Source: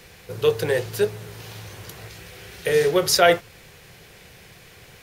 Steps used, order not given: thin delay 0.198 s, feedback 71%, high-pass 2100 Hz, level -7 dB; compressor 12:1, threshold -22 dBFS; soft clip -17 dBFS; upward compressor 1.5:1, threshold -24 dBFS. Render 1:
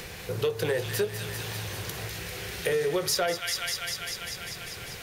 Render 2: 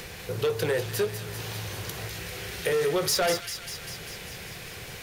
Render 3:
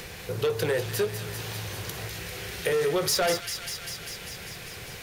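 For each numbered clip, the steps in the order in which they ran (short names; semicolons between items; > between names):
thin delay > compressor > upward compressor > soft clip; upward compressor > soft clip > compressor > thin delay; soft clip > compressor > thin delay > upward compressor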